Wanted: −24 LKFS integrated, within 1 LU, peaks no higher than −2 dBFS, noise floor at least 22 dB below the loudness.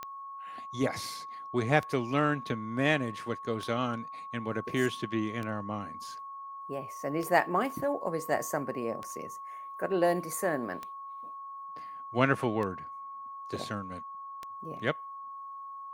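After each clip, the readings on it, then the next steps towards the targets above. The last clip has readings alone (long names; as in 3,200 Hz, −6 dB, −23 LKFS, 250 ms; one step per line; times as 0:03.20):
number of clicks 9; interfering tone 1,100 Hz; level of the tone −40 dBFS; integrated loudness −33.0 LKFS; sample peak −8.0 dBFS; target loudness −24.0 LKFS
→ click removal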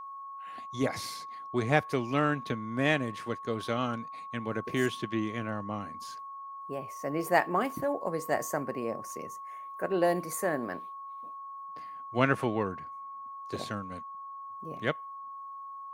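number of clicks 0; interfering tone 1,100 Hz; level of the tone −40 dBFS
→ notch filter 1,100 Hz, Q 30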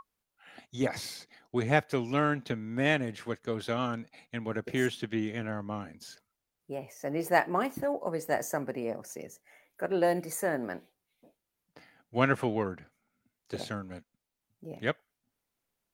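interfering tone none found; integrated loudness −32.0 LKFS; sample peak −8.0 dBFS; target loudness −24.0 LKFS
→ level +8 dB
brickwall limiter −2 dBFS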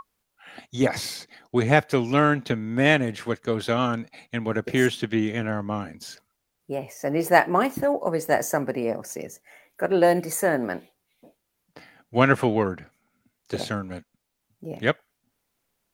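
integrated loudness −24.0 LKFS; sample peak −2.0 dBFS; background noise floor −78 dBFS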